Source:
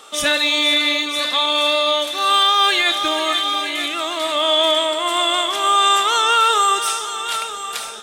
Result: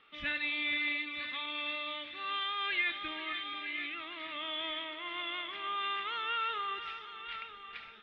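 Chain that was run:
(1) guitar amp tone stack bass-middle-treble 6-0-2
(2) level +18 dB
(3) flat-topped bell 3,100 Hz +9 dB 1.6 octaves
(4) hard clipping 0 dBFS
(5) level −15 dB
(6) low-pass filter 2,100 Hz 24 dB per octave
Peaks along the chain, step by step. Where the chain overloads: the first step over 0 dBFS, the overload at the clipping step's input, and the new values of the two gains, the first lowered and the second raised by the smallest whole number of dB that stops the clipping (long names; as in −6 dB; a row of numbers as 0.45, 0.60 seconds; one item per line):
−23.5, −5.5, +3.0, 0.0, −15.0, −21.5 dBFS
step 3, 3.0 dB
step 2 +15 dB, step 5 −12 dB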